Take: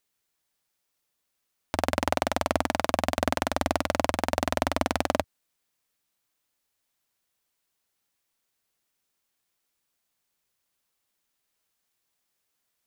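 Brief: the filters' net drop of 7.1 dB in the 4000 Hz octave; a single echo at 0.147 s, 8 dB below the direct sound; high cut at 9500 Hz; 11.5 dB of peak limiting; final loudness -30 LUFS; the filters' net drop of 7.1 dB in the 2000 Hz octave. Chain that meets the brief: LPF 9500 Hz; bell 2000 Hz -8 dB; bell 4000 Hz -6.5 dB; limiter -19.5 dBFS; echo 0.147 s -8 dB; gain +8 dB

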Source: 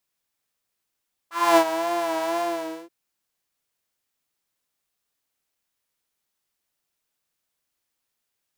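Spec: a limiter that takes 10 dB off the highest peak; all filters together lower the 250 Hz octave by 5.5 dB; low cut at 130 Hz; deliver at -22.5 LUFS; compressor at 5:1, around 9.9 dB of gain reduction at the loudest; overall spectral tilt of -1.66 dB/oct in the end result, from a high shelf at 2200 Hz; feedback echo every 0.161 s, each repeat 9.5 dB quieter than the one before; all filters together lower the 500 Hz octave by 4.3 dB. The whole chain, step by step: HPF 130 Hz; bell 250 Hz -4 dB; bell 500 Hz -7.5 dB; high shelf 2200 Hz +6 dB; compressor 5:1, threshold -25 dBFS; limiter -23.5 dBFS; feedback echo 0.161 s, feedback 33%, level -9.5 dB; gain +12.5 dB

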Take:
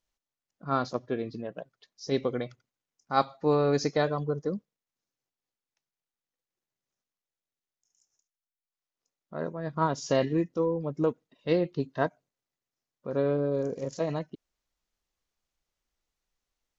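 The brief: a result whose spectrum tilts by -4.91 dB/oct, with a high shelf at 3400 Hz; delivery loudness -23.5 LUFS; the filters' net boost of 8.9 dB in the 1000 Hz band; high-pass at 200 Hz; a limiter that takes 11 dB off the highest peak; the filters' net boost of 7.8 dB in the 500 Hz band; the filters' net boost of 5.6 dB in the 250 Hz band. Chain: HPF 200 Hz; bell 250 Hz +6 dB; bell 500 Hz +5.5 dB; bell 1000 Hz +8.5 dB; high shelf 3400 Hz +8.5 dB; gain +1.5 dB; limiter -10.5 dBFS

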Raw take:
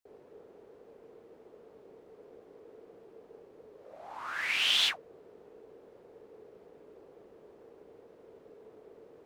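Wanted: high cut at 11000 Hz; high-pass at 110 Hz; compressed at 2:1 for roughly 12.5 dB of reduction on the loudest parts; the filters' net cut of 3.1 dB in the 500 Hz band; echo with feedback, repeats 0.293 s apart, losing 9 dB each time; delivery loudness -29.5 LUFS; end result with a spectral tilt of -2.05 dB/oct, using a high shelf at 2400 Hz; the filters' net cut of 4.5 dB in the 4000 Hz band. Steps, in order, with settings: HPF 110 Hz; LPF 11000 Hz; bell 500 Hz -3.5 dB; high shelf 2400 Hz -3.5 dB; bell 4000 Hz -3 dB; compressor 2:1, threshold -51 dBFS; feedback echo 0.293 s, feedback 35%, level -9 dB; gain +21.5 dB

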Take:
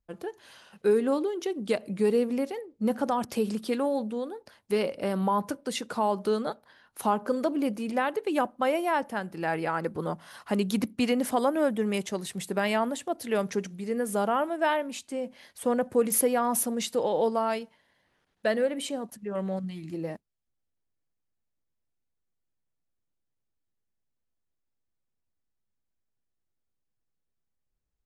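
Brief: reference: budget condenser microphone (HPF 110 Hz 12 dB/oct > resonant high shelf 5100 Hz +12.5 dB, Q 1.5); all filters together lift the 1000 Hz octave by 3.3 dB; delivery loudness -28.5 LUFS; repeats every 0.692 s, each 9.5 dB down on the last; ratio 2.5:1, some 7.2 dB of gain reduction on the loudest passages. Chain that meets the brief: bell 1000 Hz +4.5 dB; compressor 2.5:1, threshold -29 dBFS; HPF 110 Hz 12 dB/oct; resonant high shelf 5100 Hz +12.5 dB, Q 1.5; feedback echo 0.692 s, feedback 33%, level -9.5 dB

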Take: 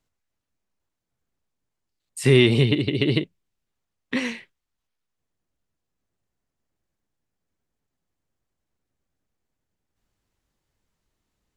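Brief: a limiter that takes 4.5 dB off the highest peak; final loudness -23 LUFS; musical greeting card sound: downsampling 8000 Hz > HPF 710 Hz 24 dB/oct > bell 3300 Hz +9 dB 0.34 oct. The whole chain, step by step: limiter -7.5 dBFS; downsampling 8000 Hz; HPF 710 Hz 24 dB/oct; bell 3300 Hz +9 dB 0.34 oct; gain +3.5 dB

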